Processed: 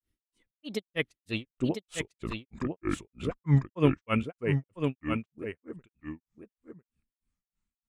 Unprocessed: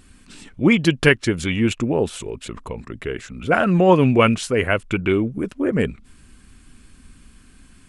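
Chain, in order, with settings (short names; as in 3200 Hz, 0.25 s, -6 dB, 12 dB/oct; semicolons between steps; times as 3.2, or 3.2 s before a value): Doppler pass-by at 2.49, 36 m/s, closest 12 m; spectral noise reduction 8 dB; grains 0.207 s, grains 3.2/s, spray 11 ms, pitch spread up and down by 3 st; notch 1500 Hz, Q 15; echo 0.999 s -4 dB; upward expander 1.5:1, over -51 dBFS; gain +8 dB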